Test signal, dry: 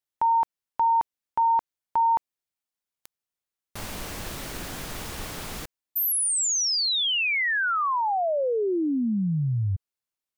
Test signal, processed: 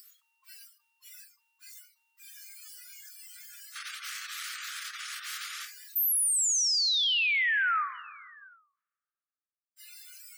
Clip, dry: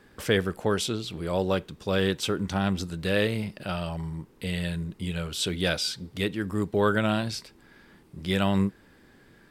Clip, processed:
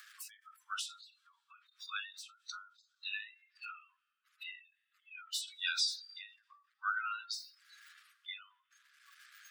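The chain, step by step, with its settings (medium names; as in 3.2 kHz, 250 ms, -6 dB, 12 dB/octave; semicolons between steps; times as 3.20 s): jump at every zero crossing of -27.5 dBFS; spectral gate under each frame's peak -25 dB strong; Schroeder reverb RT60 2.1 s, combs from 28 ms, DRR 13 dB; spectral noise reduction 26 dB; upward compressor, threshold -42 dBFS; steep high-pass 1.2 kHz 96 dB/octave; endings held to a fixed fall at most 130 dB/s; trim -4.5 dB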